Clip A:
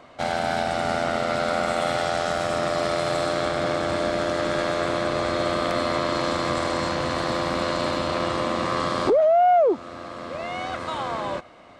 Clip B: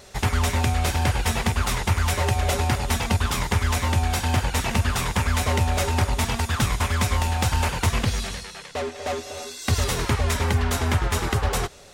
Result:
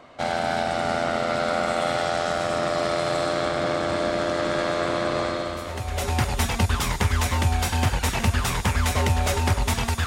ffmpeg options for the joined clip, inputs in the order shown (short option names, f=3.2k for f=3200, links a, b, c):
-filter_complex "[0:a]apad=whole_dur=10.06,atrim=end=10.06,atrim=end=6.21,asetpts=PTS-STARTPTS[a];[1:a]atrim=start=1.72:end=6.57,asetpts=PTS-STARTPTS[b];[a][b]acrossfade=d=1:c1=qua:c2=qua"